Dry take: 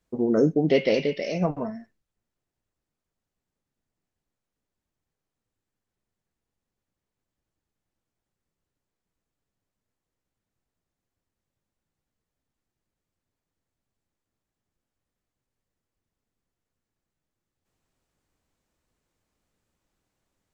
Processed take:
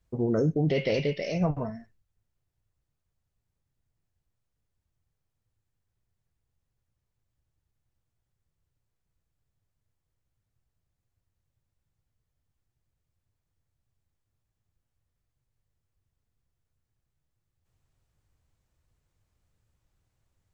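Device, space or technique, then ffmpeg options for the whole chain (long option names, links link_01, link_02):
car stereo with a boomy subwoofer: -af "lowshelf=frequency=160:width_type=q:width=1.5:gain=10,alimiter=limit=-15.5dB:level=0:latency=1:release=13,volume=-2dB"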